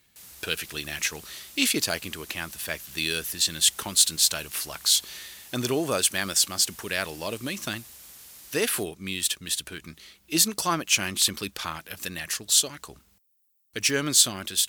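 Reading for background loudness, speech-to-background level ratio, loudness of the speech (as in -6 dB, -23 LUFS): -44.5 LUFS, 19.5 dB, -25.0 LUFS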